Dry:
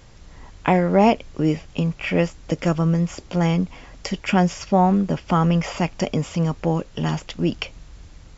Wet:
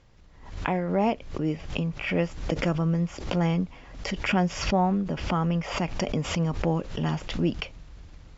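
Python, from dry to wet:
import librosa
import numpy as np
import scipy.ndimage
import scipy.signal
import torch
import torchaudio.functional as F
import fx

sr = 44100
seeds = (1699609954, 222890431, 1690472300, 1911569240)

y = fx.rider(x, sr, range_db=10, speed_s=2.0)
y = fx.air_absorb(y, sr, metres=86.0)
y = fx.pre_swell(y, sr, db_per_s=77.0)
y = y * 10.0 ** (-7.0 / 20.0)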